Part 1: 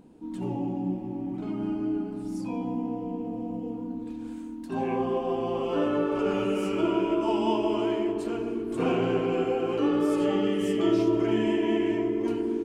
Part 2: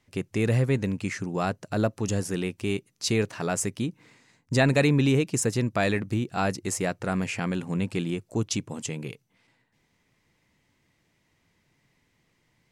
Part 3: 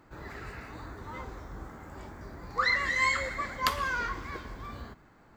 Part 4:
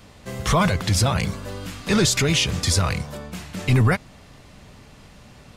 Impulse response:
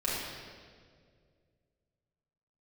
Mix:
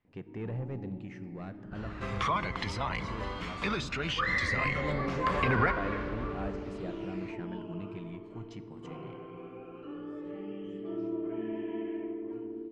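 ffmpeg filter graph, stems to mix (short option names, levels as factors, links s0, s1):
-filter_complex "[0:a]adelay=50,volume=0.1,asplit=2[s0][s1];[s1]volume=0.224[s2];[1:a]asoftclip=type=tanh:threshold=0.0841,volume=0.168,asplit=2[s3][s4];[s4]volume=0.112[s5];[2:a]adelay=1600,volume=0.398,asplit=2[s6][s7];[s7]volume=0.473[s8];[3:a]highpass=f=690:p=1,acompressor=threshold=0.0355:ratio=10,adelay=1750,volume=1.19[s9];[4:a]atrim=start_sample=2205[s10];[s2][s5][s8]amix=inputs=3:normalize=0[s11];[s11][s10]afir=irnorm=-1:irlink=0[s12];[s0][s3][s6][s9][s12]amix=inputs=5:normalize=0,lowpass=2500,aphaser=in_gain=1:out_gain=1:delay=1:decay=0.4:speed=0.17:type=sinusoidal"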